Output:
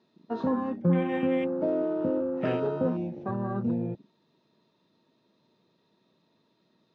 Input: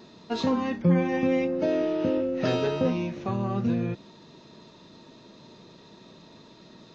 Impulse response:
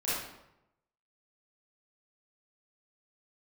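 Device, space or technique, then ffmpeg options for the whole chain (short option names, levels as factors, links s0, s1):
over-cleaned archive recording: -af "highpass=110,lowpass=5000,afwtdn=0.0178,volume=0.794"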